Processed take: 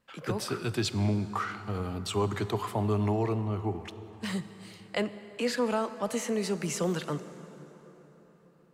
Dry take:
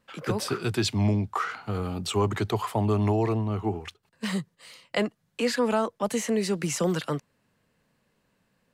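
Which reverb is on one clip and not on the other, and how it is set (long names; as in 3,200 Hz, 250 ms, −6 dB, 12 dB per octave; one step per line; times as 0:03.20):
dense smooth reverb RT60 4.4 s, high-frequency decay 0.6×, DRR 12 dB
level −4 dB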